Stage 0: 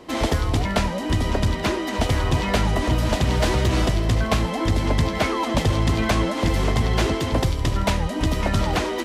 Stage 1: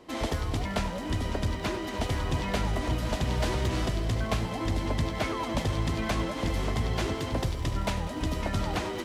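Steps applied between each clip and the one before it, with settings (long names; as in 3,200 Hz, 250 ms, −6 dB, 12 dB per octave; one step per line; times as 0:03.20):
feedback echo at a low word length 98 ms, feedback 80%, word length 8 bits, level −14.5 dB
level −8.5 dB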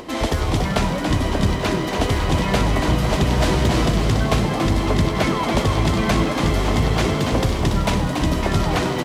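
upward compression, threshold −39 dBFS
echo with shifted repeats 283 ms, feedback 47%, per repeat +93 Hz, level −6 dB
level +9 dB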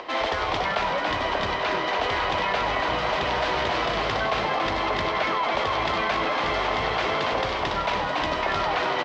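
three-way crossover with the lows and the highs turned down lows −22 dB, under 520 Hz, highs −23 dB, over 6,500 Hz
in parallel at +2 dB: compressor whose output falls as the input rises −28 dBFS, ratio −1
on the sum: high-frequency loss of the air 150 metres
level −3.5 dB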